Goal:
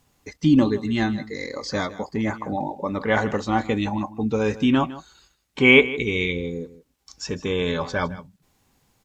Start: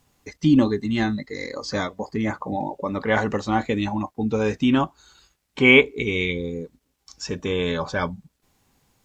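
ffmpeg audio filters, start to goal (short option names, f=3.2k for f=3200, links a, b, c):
-af "aecho=1:1:157:0.15"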